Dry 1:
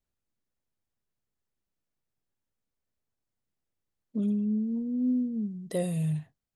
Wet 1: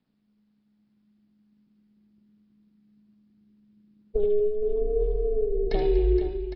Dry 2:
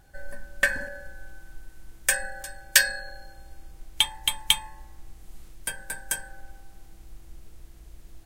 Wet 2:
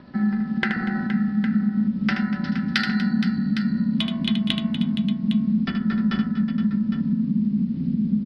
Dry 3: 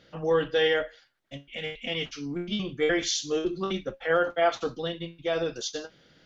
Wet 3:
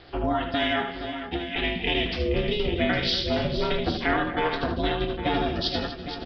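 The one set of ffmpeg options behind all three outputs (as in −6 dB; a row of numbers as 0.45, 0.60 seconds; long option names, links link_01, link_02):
-filter_complex "[0:a]acrossover=split=490|3000[link_01][link_02][link_03];[link_01]acompressor=threshold=-31dB:ratio=6[link_04];[link_04][link_02][link_03]amix=inputs=3:normalize=0,aresample=11025,aresample=44100,asubboost=boost=5.5:cutoff=180,asplit=2[link_05][link_06];[link_06]asoftclip=type=tanh:threshold=-12dB,volume=-3.5dB[link_07];[link_05][link_07]amix=inputs=2:normalize=0,acompressor=threshold=-26dB:ratio=6,aphaser=in_gain=1:out_gain=1:delay=2.5:decay=0.21:speed=0.49:type=triangular,aeval=exprs='val(0)*sin(2*PI*210*n/s)':channel_layout=same,aecho=1:1:77|241|469|809:0.422|0.188|0.282|0.282,volume=6.5dB"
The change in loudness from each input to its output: +4.0, +2.5, +2.0 LU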